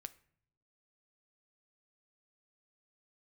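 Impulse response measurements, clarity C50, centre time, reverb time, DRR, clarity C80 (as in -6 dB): 18.5 dB, 3 ms, not exponential, 12.0 dB, 22.5 dB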